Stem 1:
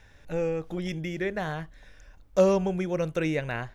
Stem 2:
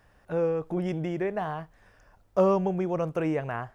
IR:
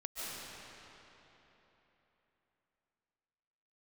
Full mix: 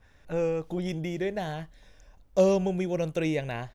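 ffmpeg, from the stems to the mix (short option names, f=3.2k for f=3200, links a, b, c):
-filter_complex "[0:a]adynamicequalizer=threshold=0.00631:dfrequency=2400:dqfactor=0.7:tfrequency=2400:tqfactor=0.7:attack=5:release=100:ratio=0.375:range=3:mode=boostabove:tftype=highshelf,volume=-4.5dB[a];[1:a]adelay=0.7,volume=-8dB[b];[a][b]amix=inputs=2:normalize=0"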